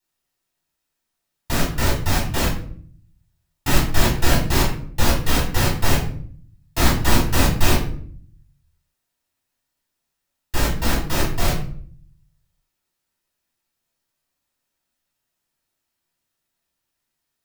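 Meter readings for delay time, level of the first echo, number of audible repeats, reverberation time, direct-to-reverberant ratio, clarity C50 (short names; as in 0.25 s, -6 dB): none, none, none, 0.55 s, -7.5 dB, 6.0 dB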